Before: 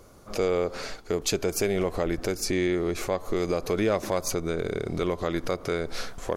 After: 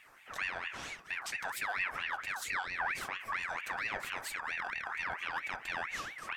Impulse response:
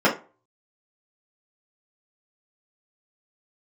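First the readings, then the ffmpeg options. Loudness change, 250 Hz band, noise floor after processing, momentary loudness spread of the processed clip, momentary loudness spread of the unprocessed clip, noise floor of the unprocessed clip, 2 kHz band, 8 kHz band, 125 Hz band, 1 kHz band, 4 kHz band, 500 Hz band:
−8.5 dB, −28.0 dB, −56 dBFS, 5 LU, 5 LU, −49 dBFS, +3.0 dB, −13.0 dB, −24.5 dB, −3.0 dB, −8.0 dB, −24.5 dB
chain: -filter_complex "[0:a]alimiter=limit=-21dB:level=0:latency=1:release=66,asplit=2[link_01][link_02];[1:a]atrim=start_sample=2205,asetrate=30870,aresample=44100[link_03];[link_02][link_03]afir=irnorm=-1:irlink=0,volume=-27dB[link_04];[link_01][link_04]amix=inputs=2:normalize=0,aeval=exprs='val(0)*sin(2*PI*1700*n/s+1700*0.35/4.4*sin(2*PI*4.4*n/s))':channel_layout=same,volume=-6.5dB"

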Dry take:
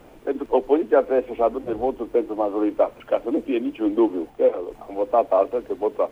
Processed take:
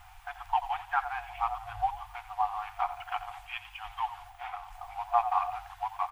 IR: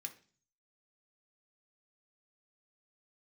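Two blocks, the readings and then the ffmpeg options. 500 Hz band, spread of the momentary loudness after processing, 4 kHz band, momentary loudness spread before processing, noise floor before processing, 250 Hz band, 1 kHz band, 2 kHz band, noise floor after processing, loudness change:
−24.5 dB, 13 LU, can't be measured, 7 LU, −47 dBFS, below −40 dB, −1.0 dB, 0.0 dB, −52 dBFS, −11.0 dB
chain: -filter_complex "[0:a]asplit=4[link_01][link_02][link_03][link_04];[link_02]adelay=86,afreqshift=44,volume=-14dB[link_05];[link_03]adelay=172,afreqshift=88,volume=-23.4dB[link_06];[link_04]adelay=258,afreqshift=132,volume=-32.7dB[link_07];[link_01][link_05][link_06][link_07]amix=inputs=4:normalize=0,afftfilt=real='re*(1-between(b*sr/4096,110,710))':imag='im*(1-between(b*sr/4096,110,710))':win_size=4096:overlap=0.75"

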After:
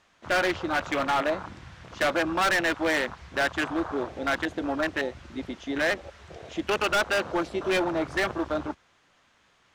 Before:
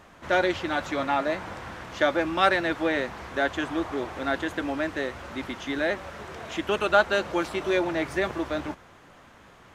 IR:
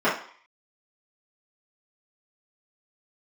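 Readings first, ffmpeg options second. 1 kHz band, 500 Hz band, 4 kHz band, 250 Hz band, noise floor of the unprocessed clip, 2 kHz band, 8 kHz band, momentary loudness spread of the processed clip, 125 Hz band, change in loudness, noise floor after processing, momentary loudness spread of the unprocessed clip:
−1.0 dB, −1.5 dB, +1.0 dB, −1.0 dB, −52 dBFS, +1.0 dB, +5.5 dB, 13 LU, −1.0 dB, −0.5 dB, −64 dBFS, 13 LU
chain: -af "afwtdn=0.0316,lowpass=5000,crystalizer=i=7.5:c=0,volume=20.5dB,asoftclip=hard,volume=-20.5dB"

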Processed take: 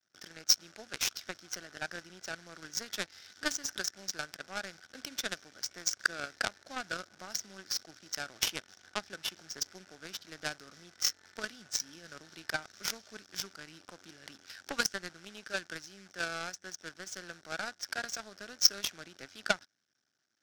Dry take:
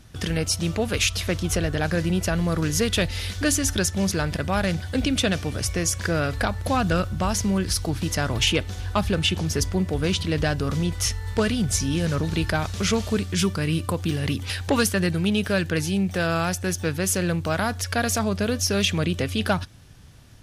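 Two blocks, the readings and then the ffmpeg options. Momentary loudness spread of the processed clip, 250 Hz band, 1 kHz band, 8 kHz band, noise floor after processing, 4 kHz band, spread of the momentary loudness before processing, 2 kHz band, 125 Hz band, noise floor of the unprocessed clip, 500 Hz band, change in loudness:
15 LU, −26.0 dB, −14.0 dB, −9.0 dB, −70 dBFS, −7.5 dB, 4 LU, −9.0 dB, −32.0 dB, −35 dBFS, −19.5 dB, −12.0 dB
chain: -af "acrusher=bits=6:dc=4:mix=0:aa=0.000001,highpass=350,equalizer=frequency=470:width_type=q:width=4:gain=-6,equalizer=frequency=1000:width_type=q:width=4:gain=-9,equalizer=frequency=1500:width_type=q:width=4:gain=10,equalizer=frequency=2700:width_type=q:width=4:gain=-4,equalizer=frequency=5500:width_type=q:width=4:gain=10,lowpass=frequency=7200:width=0.5412,lowpass=frequency=7200:width=1.3066,aeval=exprs='0.501*(cos(1*acos(clip(val(0)/0.501,-1,1)))-cos(1*PI/2))+0.158*(cos(3*acos(clip(val(0)/0.501,-1,1)))-cos(3*PI/2))':channel_layout=same"

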